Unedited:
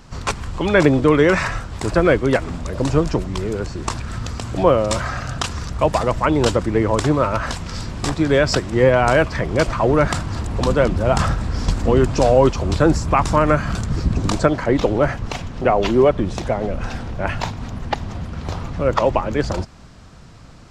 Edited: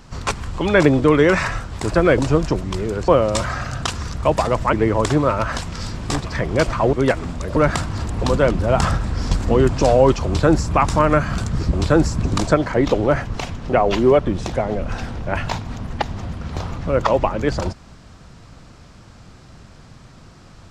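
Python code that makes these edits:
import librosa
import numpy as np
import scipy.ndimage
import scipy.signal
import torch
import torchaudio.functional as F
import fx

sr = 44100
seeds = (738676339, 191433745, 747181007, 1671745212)

y = fx.edit(x, sr, fx.move(start_s=2.18, length_s=0.63, to_s=9.93),
    fx.cut(start_s=3.71, length_s=0.93),
    fx.cut(start_s=6.29, length_s=0.38),
    fx.cut(start_s=8.19, length_s=1.06),
    fx.duplicate(start_s=12.63, length_s=0.45, to_s=14.1), tone=tone)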